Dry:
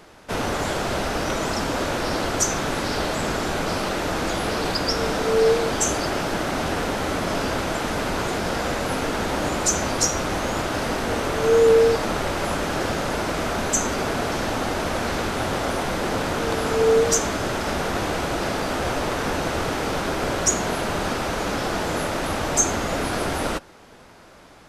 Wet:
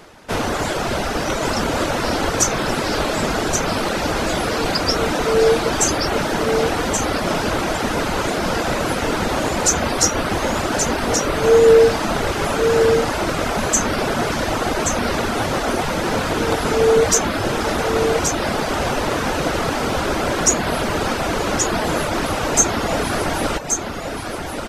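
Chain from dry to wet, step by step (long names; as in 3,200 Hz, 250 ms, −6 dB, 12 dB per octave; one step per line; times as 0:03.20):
single-tap delay 1,128 ms −5.5 dB
on a send at −12 dB: convolution reverb RT60 0.65 s, pre-delay 9 ms
on the sum: reverb reduction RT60 0.6 s
level +4.5 dB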